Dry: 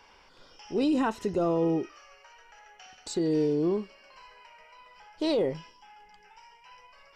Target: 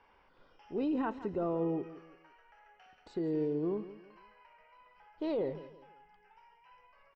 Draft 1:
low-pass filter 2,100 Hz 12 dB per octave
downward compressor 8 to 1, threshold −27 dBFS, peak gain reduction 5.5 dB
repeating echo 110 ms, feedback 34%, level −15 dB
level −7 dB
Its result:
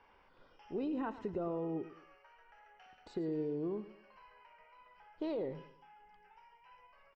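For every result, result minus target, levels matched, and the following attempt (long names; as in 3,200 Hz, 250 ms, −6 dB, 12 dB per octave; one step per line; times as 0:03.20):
echo 58 ms early; downward compressor: peak gain reduction +5.5 dB
low-pass filter 2,100 Hz 12 dB per octave
downward compressor 8 to 1, threshold −27 dBFS, peak gain reduction 5.5 dB
repeating echo 168 ms, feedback 34%, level −15 dB
level −7 dB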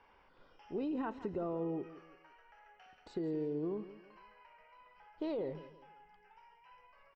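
downward compressor: peak gain reduction +5.5 dB
low-pass filter 2,100 Hz 12 dB per octave
repeating echo 168 ms, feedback 34%, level −15 dB
level −7 dB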